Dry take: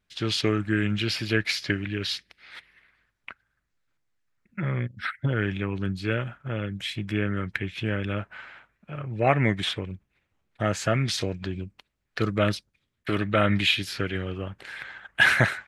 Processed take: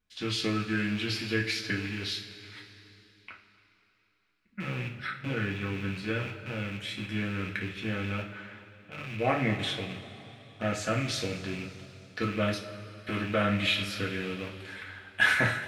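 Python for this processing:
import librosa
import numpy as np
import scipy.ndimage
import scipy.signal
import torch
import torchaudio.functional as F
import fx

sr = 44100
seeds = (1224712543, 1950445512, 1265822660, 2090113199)

y = fx.rattle_buzz(x, sr, strikes_db=-34.0, level_db=-24.0)
y = fx.rev_double_slope(y, sr, seeds[0], early_s=0.32, late_s=3.3, knee_db=-18, drr_db=-1.5)
y = y * librosa.db_to_amplitude(-8.0)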